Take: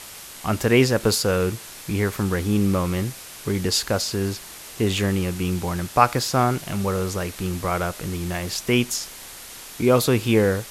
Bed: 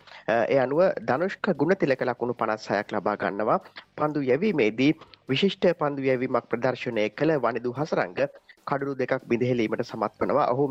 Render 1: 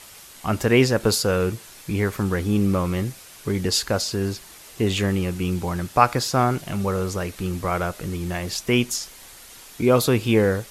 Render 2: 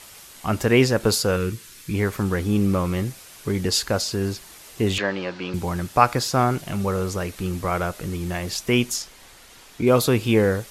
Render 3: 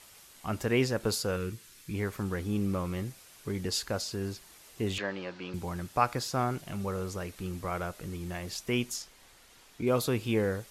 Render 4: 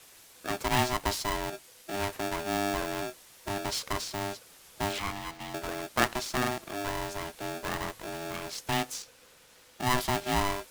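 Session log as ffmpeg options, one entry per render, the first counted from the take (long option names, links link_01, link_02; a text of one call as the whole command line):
ffmpeg -i in.wav -af "afftdn=noise_reduction=6:noise_floor=-40" out.wav
ffmpeg -i in.wav -filter_complex "[0:a]asettb=1/sr,asplit=3[link_01][link_02][link_03];[link_01]atrim=end=1.364[link_04];[link_02]atrim=start=1.36:end=1.94,asetpts=PTS-STARTPTS,afade=type=in:duration=0.004:curve=qsin,afade=type=out:start_time=0.576:duration=0.004:curve=qsin,equalizer=frequency=710:width=1.6:gain=-14[link_05];[link_03]atrim=start=1.936[link_06];[link_04][link_05]acrossfade=duration=0.004:curve1=hsin:curve2=qsin[link_07];[link_07][link_06]acrossfade=duration=0.004:curve1=qsin:curve2=hsin,asettb=1/sr,asplit=3[link_08][link_09][link_10];[link_08]atrim=end=4.984[link_11];[link_09]atrim=start=4.98:end=5.54,asetpts=PTS-STARTPTS,afade=type=in:duration=0.004:curve=qsin,afade=type=out:start_time=0.556:duration=0.004:curve=qsin,highpass=300,equalizer=frequency=410:width_type=q:width=4:gain=-4,equalizer=frequency=590:width_type=q:width=4:gain=8,equalizer=frequency=950:width_type=q:width=4:gain=7,equalizer=frequency=1600:width_type=q:width=4:gain=8,equalizer=frequency=4300:width_type=q:width=4:gain=5,lowpass=frequency=5000:width=0.5412,lowpass=frequency=5000:width=1.3066[link_12];[link_10]atrim=start=5.536[link_13];[link_11][link_12]acrossfade=duration=0.004:curve1=hsin:curve2=qsin[link_14];[link_14][link_13]acrossfade=duration=0.004:curve1=qsin:curve2=hsin,asettb=1/sr,asplit=3[link_15][link_16][link_17];[link_15]atrim=end=9.024[link_18];[link_16]atrim=start=9.02:end=9.87,asetpts=PTS-STARTPTS,afade=type=in:duration=0.004:curve=qsin,afade=type=out:start_time=0.846:duration=0.004:curve=qsin,highshelf=frequency=6700:gain=-10[link_19];[link_17]atrim=start=9.866[link_20];[link_18][link_19]acrossfade=duration=0.004:curve1=hsin:curve2=qsin[link_21];[link_21][link_20]acrossfade=duration=0.004:curve1=qsin:curve2=hsin" out.wav
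ffmpeg -i in.wav -af "volume=-10dB" out.wav
ffmpeg -i in.wav -filter_complex "[0:a]acrossover=split=260|550|5800[link_01][link_02][link_03][link_04];[link_04]asoftclip=type=tanh:threshold=-36.5dB[link_05];[link_01][link_02][link_03][link_05]amix=inputs=4:normalize=0,aeval=exprs='val(0)*sgn(sin(2*PI*500*n/s))':channel_layout=same" out.wav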